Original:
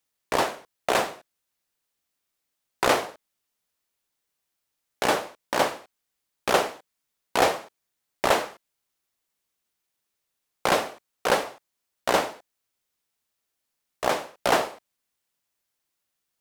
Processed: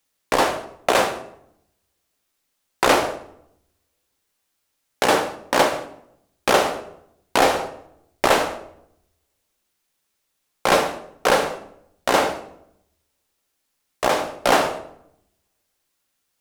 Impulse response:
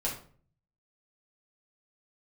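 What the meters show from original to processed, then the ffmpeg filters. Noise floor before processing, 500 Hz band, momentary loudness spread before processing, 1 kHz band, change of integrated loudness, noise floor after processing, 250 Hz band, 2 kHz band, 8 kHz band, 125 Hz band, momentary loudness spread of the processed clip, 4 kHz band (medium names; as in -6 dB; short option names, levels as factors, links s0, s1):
-81 dBFS, +5.5 dB, 11 LU, +5.5 dB, +5.0 dB, -74 dBFS, +6.5 dB, +5.0 dB, +5.0 dB, +5.0 dB, 15 LU, +5.0 dB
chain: -filter_complex "[0:a]asplit=2[s0][s1];[1:a]atrim=start_sample=2205,asetrate=24696,aresample=44100[s2];[s1][s2]afir=irnorm=-1:irlink=0,volume=0.178[s3];[s0][s3]amix=inputs=2:normalize=0,alimiter=limit=0.355:level=0:latency=1:release=127,volume=1.78"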